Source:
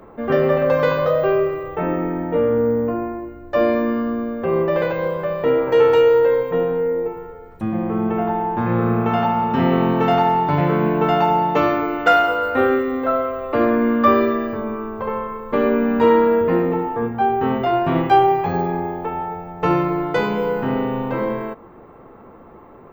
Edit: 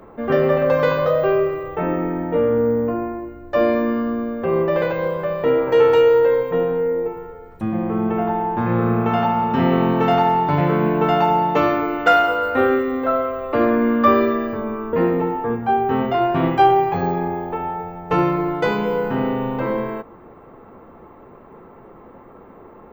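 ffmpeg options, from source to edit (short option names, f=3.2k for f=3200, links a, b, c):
-filter_complex "[0:a]asplit=2[a][b];[a]atrim=end=14.932[c];[b]atrim=start=16.448[d];[c][d]acrossfade=d=0.004:c1=hsin:c2=hsin"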